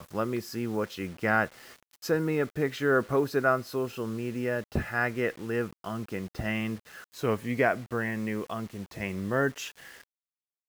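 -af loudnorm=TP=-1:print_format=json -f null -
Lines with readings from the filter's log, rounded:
"input_i" : "-30.4",
"input_tp" : "-10.6",
"input_lra" : "5.4",
"input_thresh" : "-40.9",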